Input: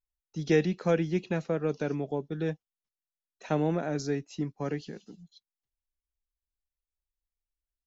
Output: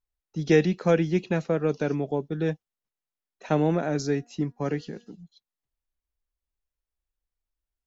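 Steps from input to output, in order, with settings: 4.03–5.09 de-hum 238.1 Hz, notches 8; mismatched tape noise reduction decoder only; gain +4.5 dB

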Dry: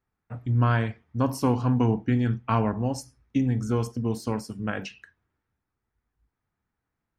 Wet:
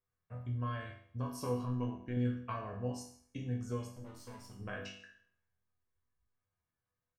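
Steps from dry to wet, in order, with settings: comb 1.8 ms, depth 47%; compressor, threshold -25 dBFS, peak gain reduction 8 dB; 3.9–4.61 tube stage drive 35 dB, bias 0.7; resonator bank E2 minor, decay 0.57 s; 1.65–2.17 AM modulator 120 Hz, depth 35%; gain +6 dB

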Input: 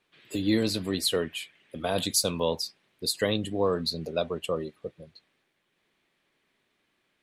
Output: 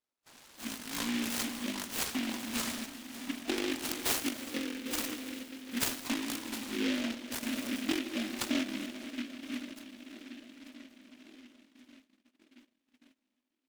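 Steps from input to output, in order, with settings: plate-style reverb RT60 2.7 s, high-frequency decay 0.8×, DRR 7.5 dB; in parallel at -5 dB: sample-rate reducer 9300 Hz; on the sum: elliptic high-pass 450 Hz, stop band 40 dB; compressor 20:1, threshold -27 dBFS, peak gain reduction 11 dB; steep low-pass 12000 Hz 48 dB/oct; wide varispeed 0.528×; darkening echo 1.126 s, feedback 58%, low-pass 1300 Hz, level -16.5 dB; gate -58 dBFS, range -19 dB; random-step tremolo; noise-modulated delay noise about 2400 Hz, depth 0.23 ms

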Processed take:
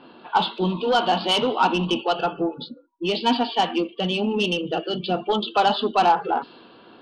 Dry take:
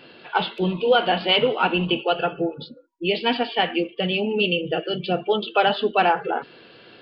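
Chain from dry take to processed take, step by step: soft clip -13 dBFS, distortion -16 dB; low-pass opened by the level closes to 2000 Hz, open at -19.5 dBFS; ten-band EQ 125 Hz -7 dB, 250 Hz +7 dB, 500 Hz -5 dB, 1000 Hz +10 dB, 2000 Hz -11 dB, 4000 Hz +7 dB

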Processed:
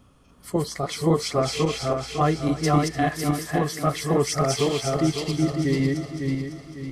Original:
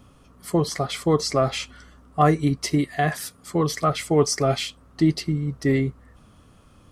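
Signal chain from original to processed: regenerating reverse delay 0.276 s, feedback 62%, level -1 dB; thinning echo 0.298 s, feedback 64%, high-pass 810 Hz, level -14.5 dB; 4.52–5.07 crackle 50/s -33 dBFS; gain -4 dB

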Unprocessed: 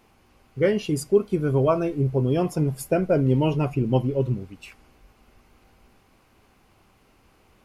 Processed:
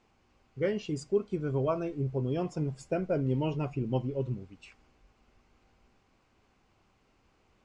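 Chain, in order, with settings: steep low-pass 8100 Hz 48 dB/oct; gain -9 dB

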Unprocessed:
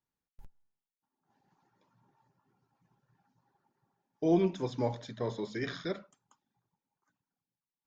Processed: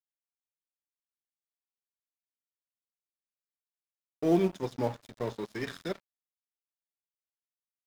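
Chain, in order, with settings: HPF 87 Hz 12 dB/oct; in parallel at -10 dB: short-mantissa float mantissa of 2-bit; on the sum: crossover distortion -41.5 dBFS

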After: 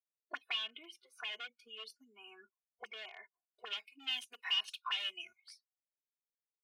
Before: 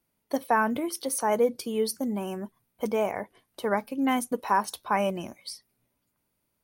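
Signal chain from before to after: high shelf 2400 Hz -5.5 dB, from 3.67 s +6.5 dB; spectral noise reduction 28 dB; wavefolder -23 dBFS; auto-wah 480–3000 Hz, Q 8.5, up, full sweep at -28 dBFS; comb 2.8 ms, depth 86%; gain +3 dB

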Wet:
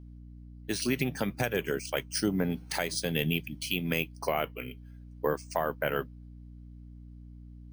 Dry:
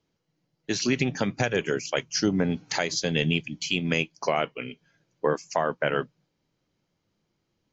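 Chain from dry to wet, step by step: careless resampling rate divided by 3×, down filtered, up hold; hum 60 Hz, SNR 14 dB; gain -4.5 dB

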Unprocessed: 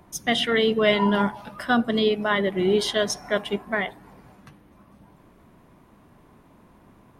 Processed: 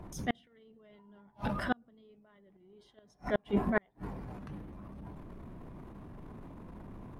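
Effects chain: tilt -2.5 dB/oct; transient shaper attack -11 dB, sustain +7 dB; flipped gate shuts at -16 dBFS, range -41 dB

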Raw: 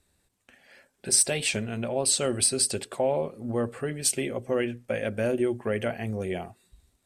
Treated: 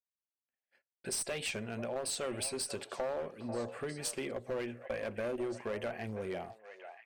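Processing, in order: low shelf 360 Hz -9 dB; gate -51 dBFS, range -39 dB; high shelf 3400 Hz -10 dB; one-sided clip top -29 dBFS; delay with a stepping band-pass 0.49 s, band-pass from 760 Hz, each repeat 1.4 oct, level -9.5 dB; compressor 2:1, threshold -37 dBFS, peak gain reduction 6 dB

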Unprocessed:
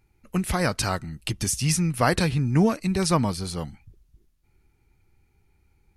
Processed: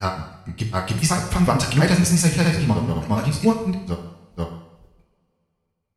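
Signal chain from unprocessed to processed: gate with hold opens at -51 dBFS; grains 0.118 s, grains 14/s, spray 0.992 s, pitch spread up and down by 0 st; two-slope reverb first 0.84 s, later 3.2 s, from -27 dB, DRR 1.5 dB; added harmonics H 8 -40 dB, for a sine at -7.5 dBFS; gain +4 dB

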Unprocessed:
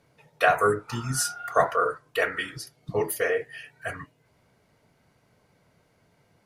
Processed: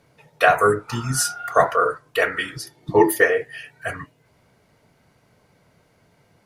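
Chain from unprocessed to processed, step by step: 2.63–3.24 small resonant body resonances 340/890/1800/3500 Hz, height 12 dB -> 16 dB; gain +5 dB

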